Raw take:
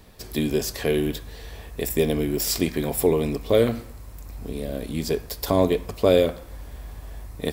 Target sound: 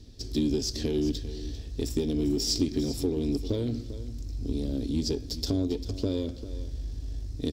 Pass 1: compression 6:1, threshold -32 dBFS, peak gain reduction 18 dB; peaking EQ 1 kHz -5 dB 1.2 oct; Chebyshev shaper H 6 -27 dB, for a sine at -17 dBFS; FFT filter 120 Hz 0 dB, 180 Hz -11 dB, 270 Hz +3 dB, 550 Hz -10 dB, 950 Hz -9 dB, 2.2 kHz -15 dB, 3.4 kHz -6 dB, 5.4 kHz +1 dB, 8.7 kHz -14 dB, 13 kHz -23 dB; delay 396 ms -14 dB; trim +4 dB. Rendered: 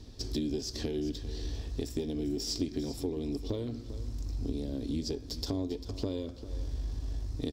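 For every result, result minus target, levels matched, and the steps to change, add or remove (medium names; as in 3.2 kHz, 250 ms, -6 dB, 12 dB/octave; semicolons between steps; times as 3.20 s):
compression: peak gain reduction +8 dB; 1 kHz band +4.5 dB
change: compression 6:1, threshold -22.5 dBFS, peak gain reduction 10 dB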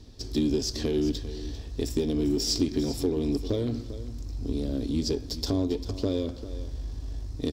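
1 kHz band +4.0 dB
change: peaking EQ 1 kHz -15.5 dB 1.2 oct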